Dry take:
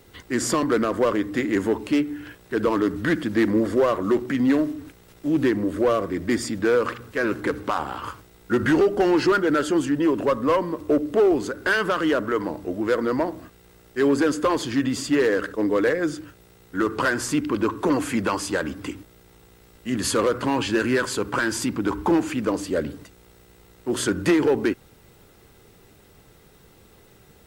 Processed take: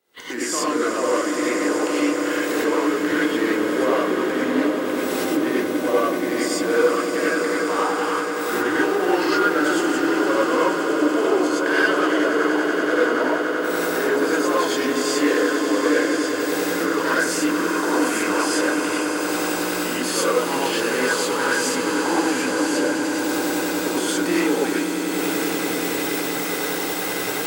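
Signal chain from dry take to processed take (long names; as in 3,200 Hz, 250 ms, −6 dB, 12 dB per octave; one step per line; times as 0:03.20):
camcorder AGC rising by 66 dB per second
noise gate −30 dBFS, range −15 dB
high-pass filter 360 Hz 12 dB per octave
echo that builds up and dies away 95 ms, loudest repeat 8, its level −12.5 dB
reverb whose tail is shaped and stops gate 140 ms rising, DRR −6.5 dB
level −5.5 dB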